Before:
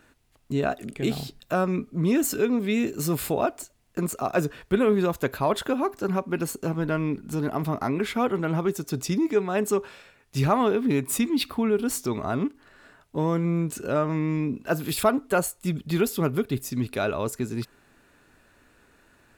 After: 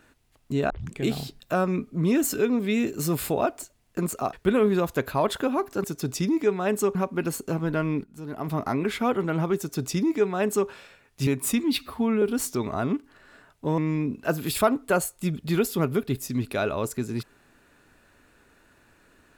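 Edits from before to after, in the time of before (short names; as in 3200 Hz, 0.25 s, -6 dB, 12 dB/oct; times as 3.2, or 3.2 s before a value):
0.7 tape start 0.26 s
4.33–4.59 cut
7.19–7.72 fade in quadratic, from -14 dB
8.73–9.84 copy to 6.1
10.42–10.93 cut
11.43–11.73 stretch 1.5×
13.29–14.2 cut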